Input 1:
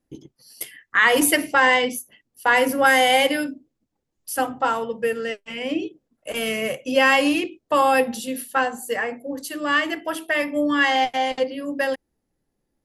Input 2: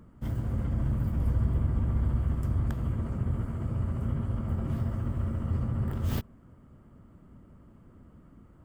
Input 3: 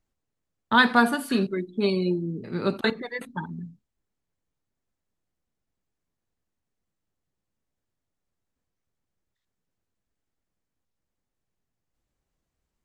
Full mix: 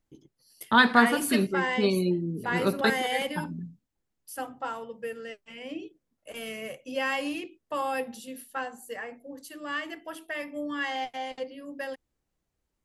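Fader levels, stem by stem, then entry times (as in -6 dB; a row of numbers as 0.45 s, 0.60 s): -12.5 dB, mute, -1.0 dB; 0.00 s, mute, 0.00 s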